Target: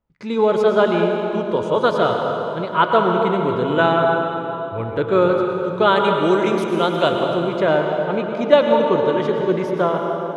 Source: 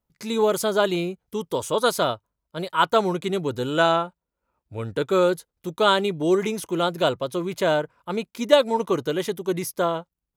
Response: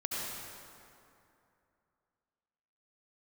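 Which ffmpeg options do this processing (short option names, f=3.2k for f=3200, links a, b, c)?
-filter_complex "[0:a]lowpass=2.5k,asettb=1/sr,asplit=3[a][b][c];[a]atrim=end=5.964[d];[b]atrim=start=5.96:end=7.23,asetpts=PTS-STARTPTS,afade=t=in:d=0.004:c=qsin,afade=t=out:st=1.266:d=0.004:c=qsin,aemphasis=mode=production:type=75fm[e];[c]atrim=start=7.226[f];[d][e]acrossfade=d=0.004:c1=hsin:c2=qsin[g];[g][f]acrossfade=d=0.004:c1=qsin:c2=hsin,bandreject=f=132.3:t=h:w=4,bandreject=f=264.6:t=h:w=4,bandreject=f=396.9:t=h:w=4,bandreject=f=529.2:t=h:w=4,bandreject=f=661.5:t=h:w=4,bandreject=f=793.8:t=h:w=4,bandreject=f=926.1:t=h:w=4,bandreject=f=1.0584k:t=h:w=4,bandreject=f=1.1907k:t=h:w=4,bandreject=f=1.323k:t=h:w=4,bandreject=f=1.4553k:t=h:w=4,bandreject=f=1.5876k:t=h:w=4,bandreject=f=1.7199k:t=h:w=4,bandreject=f=1.8522k:t=h:w=4,bandreject=f=1.9845k:t=h:w=4,bandreject=f=2.1168k:t=h:w=4,bandreject=f=2.2491k:t=h:w=4,bandreject=f=2.3814k:t=h:w=4,bandreject=f=2.5137k:t=h:w=4,bandreject=f=2.646k:t=h:w=4,bandreject=f=2.7783k:t=h:w=4,bandreject=f=2.9106k:t=h:w=4,bandreject=f=3.0429k:t=h:w=4,bandreject=f=3.1752k:t=h:w=4,bandreject=f=3.3075k:t=h:w=4,bandreject=f=3.4398k:t=h:w=4,bandreject=f=3.5721k:t=h:w=4,asplit=2[h][i];[1:a]atrim=start_sample=2205,asetrate=30870,aresample=44100[j];[i][j]afir=irnorm=-1:irlink=0,volume=-5dB[k];[h][k]amix=inputs=2:normalize=0"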